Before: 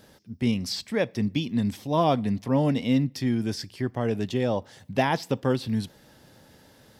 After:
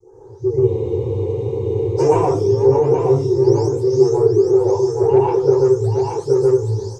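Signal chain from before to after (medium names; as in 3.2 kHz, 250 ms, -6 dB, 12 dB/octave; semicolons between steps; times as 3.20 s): delay that grows with frequency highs late, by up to 492 ms; bit crusher 12-bit; FFT filter 130 Hz 0 dB, 250 Hz -22 dB, 370 Hz +11 dB, 650 Hz -5 dB, 920 Hz +9 dB, 1.6 kHz -16 dB, 2.8 kHz -27 dB, 4.1 kHz -14 dB, 6.3 kHz +10 dB, 12 kHz -18 dB; saturation -16 dBFS, distortion -17 dB; compression, threshold -28 dBFS, peak gain reduction 8.5 dB; peaking EQ 410 Hz +12 dB 0.4 oct; delay 825 ms -4.5 dB; reverberation RT60 0.35 s, pre-delay 116 ms, DRR -5 dB; level rider gain up to 6 dB; spectral freeze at 0.70 s, 1.29 s; trim -1 dB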